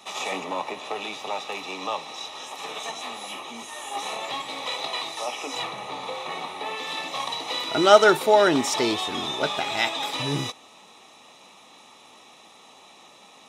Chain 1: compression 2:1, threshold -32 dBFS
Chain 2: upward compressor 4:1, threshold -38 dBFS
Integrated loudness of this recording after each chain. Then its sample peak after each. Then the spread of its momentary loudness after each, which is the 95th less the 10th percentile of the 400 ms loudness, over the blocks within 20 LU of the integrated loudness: -32.0 LUFS, -25.5 LUFS; -14.0 dBFS, -1.5 dBFS; 21 LU, 25 LU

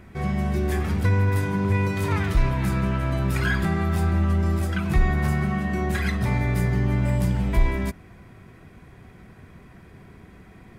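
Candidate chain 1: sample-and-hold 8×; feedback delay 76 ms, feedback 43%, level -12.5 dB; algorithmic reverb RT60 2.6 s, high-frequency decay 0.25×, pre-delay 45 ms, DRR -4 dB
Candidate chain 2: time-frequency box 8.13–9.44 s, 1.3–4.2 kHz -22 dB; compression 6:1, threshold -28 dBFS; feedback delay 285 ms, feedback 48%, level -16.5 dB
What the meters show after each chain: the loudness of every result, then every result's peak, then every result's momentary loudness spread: -17.0 LUFS, -32.0 LUFS; -1.5 dBFS, -19.0 dBFS; 9 LU, 17 LU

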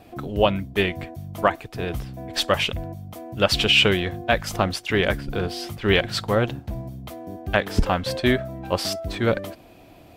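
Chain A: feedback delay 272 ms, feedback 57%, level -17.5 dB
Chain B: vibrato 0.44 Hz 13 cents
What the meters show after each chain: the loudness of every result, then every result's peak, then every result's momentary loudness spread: -23.0 LUFS, -23.0 LUFS; -4.0 dBFS, -3.5 dBFS; 14 LU, 14 LU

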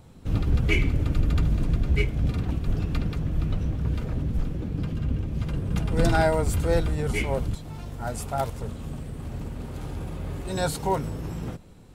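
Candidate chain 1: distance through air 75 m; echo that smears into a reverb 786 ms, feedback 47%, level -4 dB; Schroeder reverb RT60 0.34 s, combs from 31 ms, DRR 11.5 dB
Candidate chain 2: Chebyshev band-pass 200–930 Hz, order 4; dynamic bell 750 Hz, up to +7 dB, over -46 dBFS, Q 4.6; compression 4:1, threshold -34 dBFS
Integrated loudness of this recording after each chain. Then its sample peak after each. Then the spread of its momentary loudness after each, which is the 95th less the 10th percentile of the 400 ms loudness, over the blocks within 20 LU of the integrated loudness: -26.0 LUFS, -39.5 LUFS; -8.0 dBFS, -23.0 dBFS; 9 LU, 6 LU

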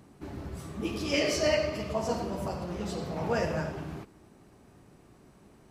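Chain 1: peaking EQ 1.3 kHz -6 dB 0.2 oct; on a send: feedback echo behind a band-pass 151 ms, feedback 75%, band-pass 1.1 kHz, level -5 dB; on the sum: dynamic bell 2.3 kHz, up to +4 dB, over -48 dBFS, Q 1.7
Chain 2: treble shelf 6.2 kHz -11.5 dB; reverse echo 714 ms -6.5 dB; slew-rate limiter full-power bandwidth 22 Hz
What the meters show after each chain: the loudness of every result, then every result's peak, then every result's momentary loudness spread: -30.0 LUFS, -33.0 LUFS; -13.0 dBFS, -19.0 dBFS; 18 LU, 8 LU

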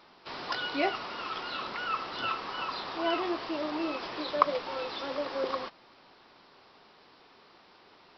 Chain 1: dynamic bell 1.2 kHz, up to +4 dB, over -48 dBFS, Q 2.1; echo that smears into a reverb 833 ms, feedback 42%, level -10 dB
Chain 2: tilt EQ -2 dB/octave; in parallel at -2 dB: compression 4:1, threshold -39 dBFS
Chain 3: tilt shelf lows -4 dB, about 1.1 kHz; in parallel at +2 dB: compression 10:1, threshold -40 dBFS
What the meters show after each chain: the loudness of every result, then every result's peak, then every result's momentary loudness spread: -31.0 LUFS, -30.5 LUFS, -30.0 LUFS; -3.0 dBFS, -4.5 dBFS, -4.5 dBFS; 18 LU, 7 LU, 21 LU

